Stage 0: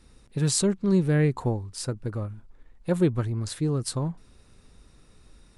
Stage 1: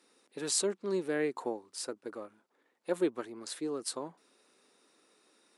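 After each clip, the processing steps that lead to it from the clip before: HPF 300 Hz 24 dB/oct; gain -4.5 dB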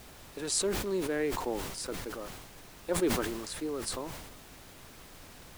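added noise pink -51 dBFS; sustainer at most 41 dB/s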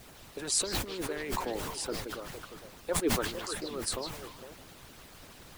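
delay with a stepping band-pass 0.152 s, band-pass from 3500 Hz, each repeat -1.4 oct, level -2.5 dB; harmonic-percussive split harmonic -15 dB; gain +3.5 dB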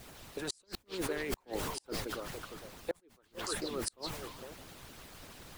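flipped gate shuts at -22 dBFS, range -36 dB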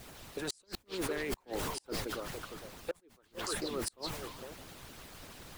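overloaded stage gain 30 dB; gain +1 dB

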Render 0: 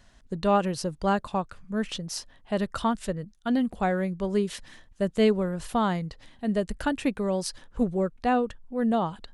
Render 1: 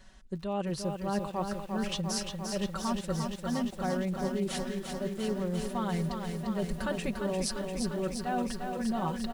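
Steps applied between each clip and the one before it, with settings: comb 5.3 ms, depth 77%; reverse; compressor 16:1, threshold -28 dBFS, peak gain reduction 15 dB; reverse; lo-fi delay 0.348 s, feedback 80%, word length 9-bit, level -5.5 dB; gain -1 dB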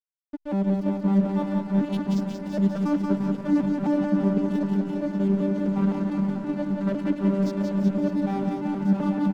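arpeggiated vocoder bare fifth, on G3, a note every 0.257 s; backlash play -39 dBFS; on a send: reverse bouncing-ball echo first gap 0.18 s, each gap 1.1×, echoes 5; on the sum: gain +8 dB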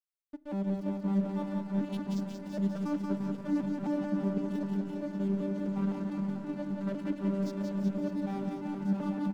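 high shelf 4600 Hz +5 dB; on a send at -19.5 dB: reverb RT60 0.55 s, pre-delay 7 ms; on the sum: gain -9 dB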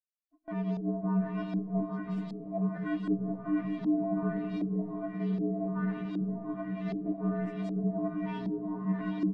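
inharmonic rescaling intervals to 115%; gate with hold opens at -36 dBFS; LFO low-pass saw up 1.3 Hz 320–4400 Hz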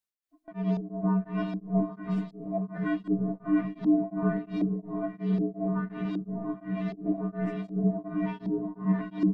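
beating tremolo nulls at 2.8 Hz; gain +5.5 dB

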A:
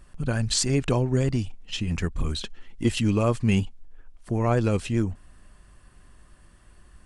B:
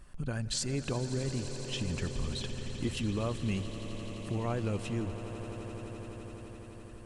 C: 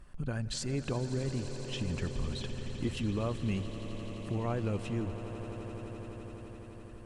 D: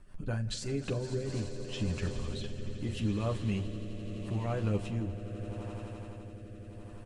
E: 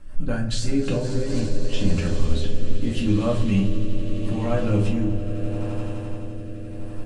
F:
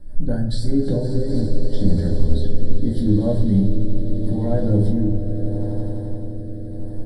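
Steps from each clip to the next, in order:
compressor 2:1, threshold -34 dBFS, peak gain reduction 9.5 dB; on a send: swelling echo 85 ms, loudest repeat 8, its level -16 dB; on the sum: gain -2.5 dB
high shelf 3700 Hz -6.5 dB
rotary speaker horn 5.5 Hz, later 0.8 Hz, at 0.8; early reflections 10 ms -4 dB, 44 ms -12.5 dB
shoebox room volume 280 m³, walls furnished, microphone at 2.2 m; gain +6 dB
Butterworth band-stop 2600 Hz, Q 0.92; fixed phaser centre 2900 Hz, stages 4; gain +4 dB

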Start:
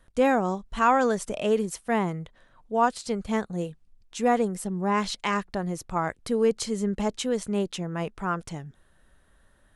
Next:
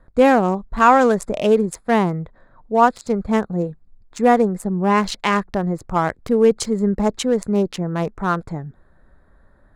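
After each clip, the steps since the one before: Wiener smoothing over 15 samples; gain +8.5 dB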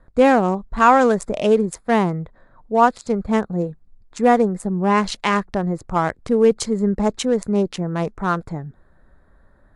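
MP3 80 kbps 24000 Hz

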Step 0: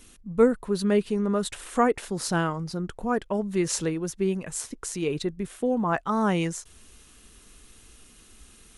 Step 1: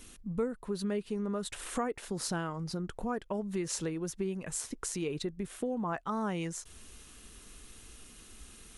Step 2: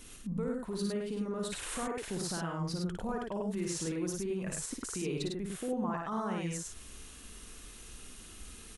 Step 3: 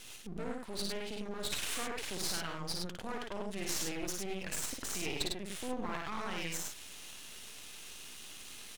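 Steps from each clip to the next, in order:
compressor 3:1, threshold -34 dBFS, peak gain reduction 15 dB
limiter -29.5 dBFS, peak gain reduction 9.5 dB; on a send: loudspeakers at several distances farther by 19 m -4 dB, 35 m -3 dB
weighting filter D; half-wave rectifier

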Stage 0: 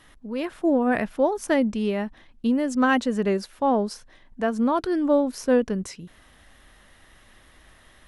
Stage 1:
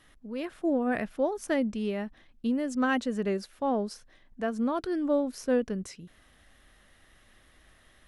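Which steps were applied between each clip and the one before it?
bell 940 Hz -5 dB 0.31 oct; gain -6 dB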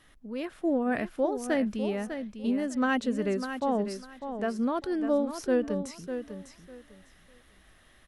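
feedback echo 0.6 s, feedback 21%, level -9 dB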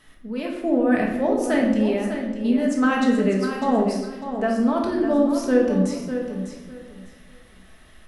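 reverb RT60 1.0 s, pre-delay 5 ms, DRR -1 dB; gain +3.5 dB

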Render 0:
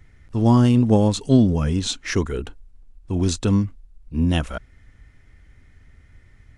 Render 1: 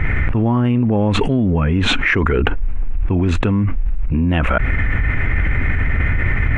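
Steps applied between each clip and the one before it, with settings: EQ curve 470 Hz 0 dB, 2400 Hz +5 dB, 4800 Hz -25 dB; fast leveller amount 100%; gain -4 dB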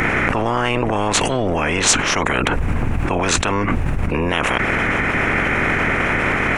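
spectral limiter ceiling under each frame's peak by 29 dB; resonant high shelf 4500 Hz +7.5 dB, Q 1.5; gain -2.5 dB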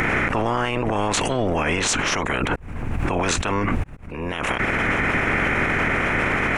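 limiter -10 dBFS, peak gain reduction 8.5 dB; auto swell 0.535 s; gain -1.5 dB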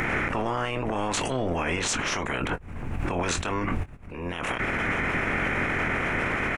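doubler 23 ms -10 dB; gain -6 dB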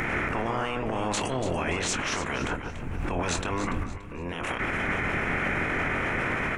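echo with dull and thin repeats by turns 0.144 s, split 1800 Hz, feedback 56%, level -6 dB; gain -2 dB

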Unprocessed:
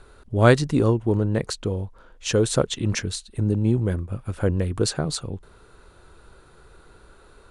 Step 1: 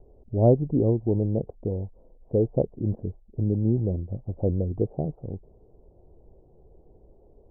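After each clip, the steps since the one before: steep low-pass 760 Hz 48 dB/oct; gain -2.5 dB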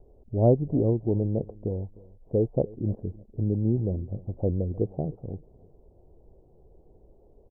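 feedback echo 0.306 s, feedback 23%, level -22 dB; gain -1.5 dB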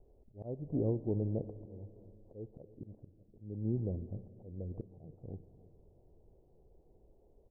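auto swell 0.364 s; Schroeder reverb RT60 3.1 s, combs from 29 ms, DRR 14.5 dB; gain -8.5 dB

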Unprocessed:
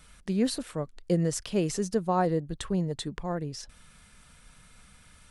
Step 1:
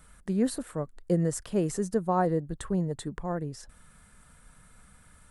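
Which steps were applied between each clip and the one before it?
band shelf 3700 Hz -8.5 dB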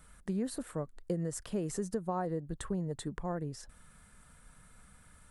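compressor 6:1, threshold -28 dBFS, peak gain reduction 8 dB; gain -2.5 dB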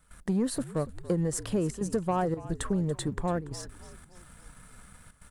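sample leveller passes 1; step gate ".xxxxx.xxxxxxxxx" 141 bpm -12 dB; frequency-shifting echo 0.285 s, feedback 52%, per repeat -56 Hz, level -17 dB; gain +4 dB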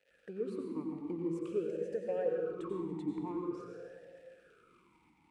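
crackle 210/s -39 dBFS; reverb RT60 2.0 s, pre-delay 82 ms, DRR 0 dB; vowel sweep e-u 0.48 Hz

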